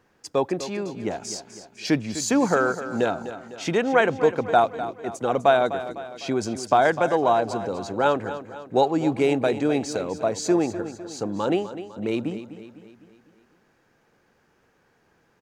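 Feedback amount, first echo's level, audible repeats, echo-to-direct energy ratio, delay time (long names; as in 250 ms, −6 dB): 50%, −12.5 dB, 4, −11.5 dB, 252 ms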